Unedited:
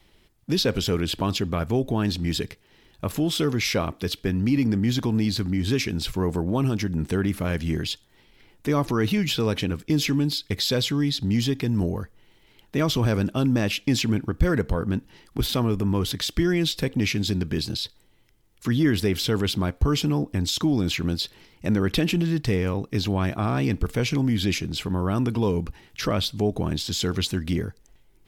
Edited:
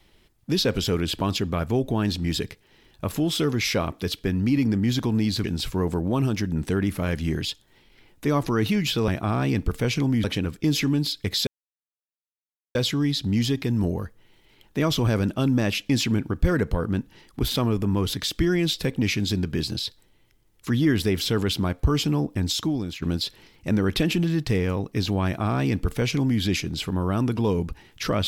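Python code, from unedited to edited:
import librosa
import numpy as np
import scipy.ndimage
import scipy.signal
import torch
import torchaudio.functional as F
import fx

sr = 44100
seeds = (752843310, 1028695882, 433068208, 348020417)

y = fx.edit(x, sr, fx.cut(start_s=5.44, length_s=0.42),
    fx.insert_silence(at_s=10.73, length_s=1.28),
    fx.fade_out_to(start_s=20.49, length_s=0.51, floor_db=-14.0),
    fx.duplicate(start_s=23.23, length_s=1.16, to_s=9.5), tone=tone)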